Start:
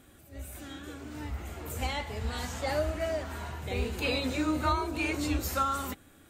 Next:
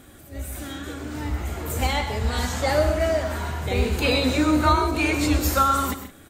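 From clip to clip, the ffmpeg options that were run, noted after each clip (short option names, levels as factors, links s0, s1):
-af "equalizer=f=2700:t=o:w=0.29:g=-3,aecho=1:1:98|128|168:0.211|0.266|0.133,volume=2.82"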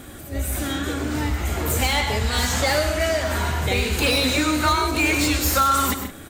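-filter_complex "[0:a]acrossover=split=1600[s0][s1];[s0]acompressor=threshold=0.0355:ratio=6[s2];[s1]asoftclip=type=hard:threshold=0.0355[s3];[s2][s3]amix=inputs=2:normalize=0,volume=2.66"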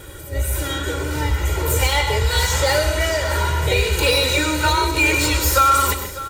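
-af "aecho=1:1:2.1:0.93,aecho=1:1:601:0.168"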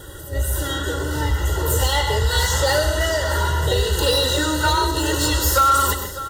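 -af "asuperstop=centerf=2300:order=20:qfactor=3.9,asoftclip=type=tanh:threshold=0.501"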